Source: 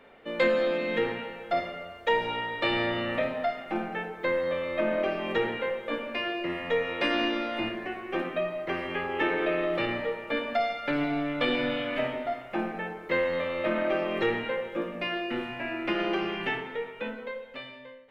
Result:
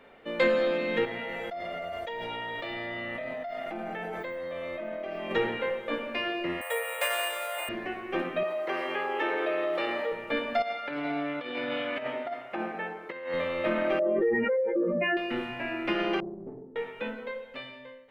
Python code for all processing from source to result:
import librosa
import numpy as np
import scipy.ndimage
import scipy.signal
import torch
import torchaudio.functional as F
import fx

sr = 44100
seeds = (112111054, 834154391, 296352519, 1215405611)

y = fx.chain(x, sr, fx.comb_fb(f0_hz=670.0, decay_s=0.19, harmonics='odd', damping=0.0, mix_pct=90),
    fx.env_flatten(amount_pct=100), at=(1.05, 5.31))
y = fx.chain(y, sr, fx.ellip_highpass(hz=510.0, order=4, stop_db=50),
    fx.resample_bad(factor=4, down='none', up='hold'), at=(6.61, 7.69))
y = fx.chain(y, sr, fx.highpass(hz=440.0, slope=12),
    fx.peak_eq(hz=2400.0, db=-4.5, octaves=1.5),
    fx.env_flatten(amount_pct=50), at=(8.43, 10.12))
y = fx.chain(y, sr, fx.highpass(hz=400.0, slope=6),
    fx.high_shelf(hz=4400.0, db=-9.0),
    fx.over_compress(threshold_db=-32.0, ratio=-0.5), at=(10.62, 13.34))
y = fx.chain(y, sr, fx.spec_expand(power=2.4),
    fx.band_shelf(hz=3400.0, db=-12.0, octaves=1.2),
    fx.env_flatten(amount_pct=70), at=(13.99, 15.17))
y = fx.chain(y, sr, fx.ladder_lowpass(hz=490.0, resonance_pct=25),
    fx.doppler_dist(depth_ms=0.35), at=(16.2, 16.76))